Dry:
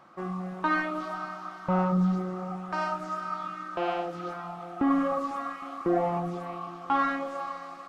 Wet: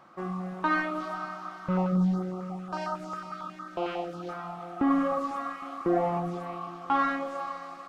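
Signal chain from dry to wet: 1.68–4.29 stepped notch 11 Hz 780–2400 Hz

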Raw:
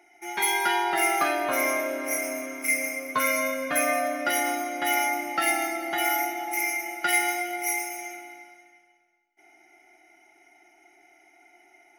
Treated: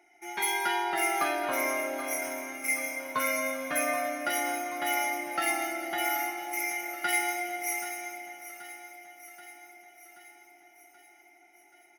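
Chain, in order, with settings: feedback echo 0.78 s, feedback 60%, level -13.5 dB; gain -4.5 dB

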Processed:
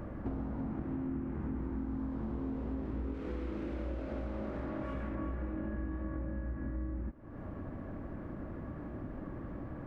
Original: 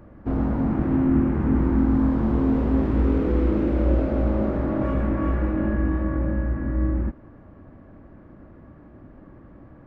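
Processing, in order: 3.14–5.15 tilt shelf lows -5 dB, about 1300 Hz; compressor 6:1, threshold -42 dBFS, peak gain reduction 24 dB; gain +5 dB

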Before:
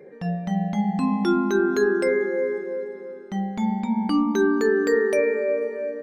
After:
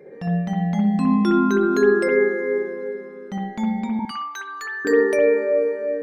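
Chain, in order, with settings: 3.99–4.85 HPF 1000 Hz 24 dB/oct; reverb, pre-delay 58 ms, DRR 1 dB

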